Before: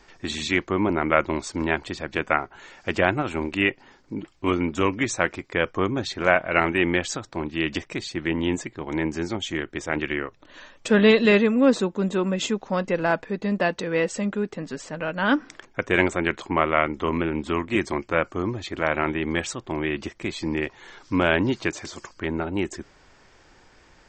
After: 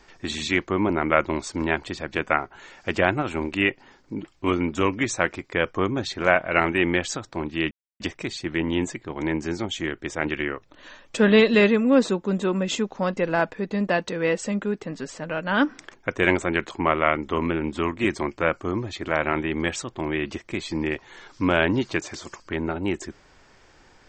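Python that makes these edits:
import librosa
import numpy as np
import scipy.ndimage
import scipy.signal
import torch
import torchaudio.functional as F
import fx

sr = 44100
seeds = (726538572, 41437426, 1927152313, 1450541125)

y = fx.edit(x, sr, fx.insert_silence(at_s=7.71, length_s=0.29), tone=tone)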